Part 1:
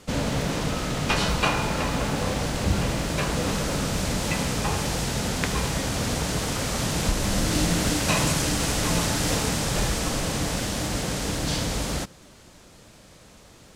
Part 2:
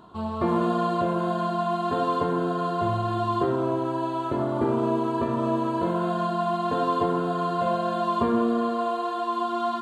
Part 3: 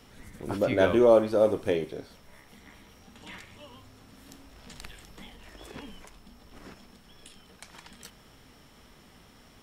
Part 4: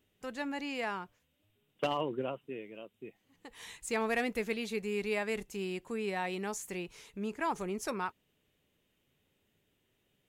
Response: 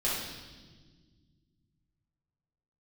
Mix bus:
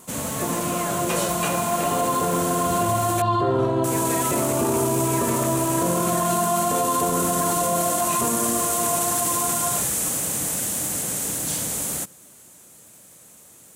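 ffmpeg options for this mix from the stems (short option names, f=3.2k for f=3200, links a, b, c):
-filter_complex "[0:a]highpass=120,aexciter=amount=9.9:drive=1.9:freq=7k,volume=-4.5dB,asplit=3[a][b][c];[a]atrim=end=3.22,asetpts=PTS-STARTPTS,afade=t=out:st=3.216:d=0.004:c=hsin[d];[b]atrim=start=3.22:end=3.84,asetpts=PTS-STARTPTS,volume=0[e];[c]atrim=start=3.84,asetpts=PTS-STARTPTS,afade=t=in:d=0.004:c=hsin[f];[d][e][f]concat=n=3:v=0:a=1[g];[1:a]dynaudnorm=f=860:g=5:m=11.5dB,volume=-5dB,asplit=2[h][i];[i]volume=-13dB[j];[2:a]adelay=100,volume=-12dB[k];[3:a]volume=-1dB[l];[4:a]atrim=start_sample=2205[m];[j][m]afir=irnorm=-1:irlink=0[n];[g][h][k][l][n]amix=inputs=5:normalize=0,alimiter=limit=-13dB:level=0:latency=1:release=18"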